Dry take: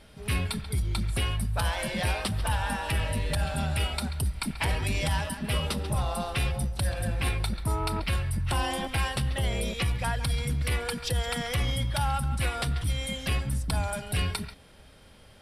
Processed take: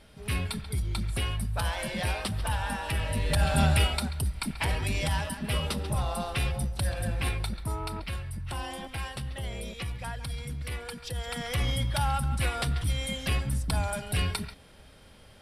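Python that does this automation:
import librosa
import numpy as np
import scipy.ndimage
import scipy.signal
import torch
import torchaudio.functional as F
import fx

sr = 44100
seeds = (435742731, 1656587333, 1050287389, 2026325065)

y = fx.gain(x, sr, db=fx.line((3.03, -2.0), (3.65, 7.0), (4.12, -1.0), (7.17, -1.0), (8.22, -7.5), (11.09, -7.5), (11.65, 0.0)))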